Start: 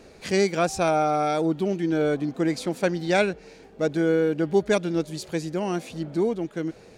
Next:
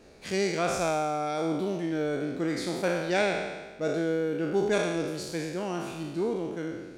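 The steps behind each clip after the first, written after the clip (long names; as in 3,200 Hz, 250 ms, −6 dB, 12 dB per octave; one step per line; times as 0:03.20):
peak hold with a decay on every bin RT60 1.28 s
level −7 dB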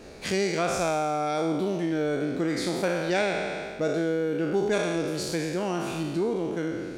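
downward compressor 2 to 1, threshold −37 dBFS, peak gain reduction 9 dB
level +8.5 dB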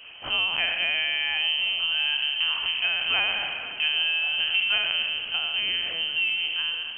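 linear-prediction vocoder at 8 kHz pitch kept
voice inversion scrambler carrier 3,100 Hz
echo through a band-pass that steps 273 ms, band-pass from 180 Hz, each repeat 0.7 octaves, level −5 dB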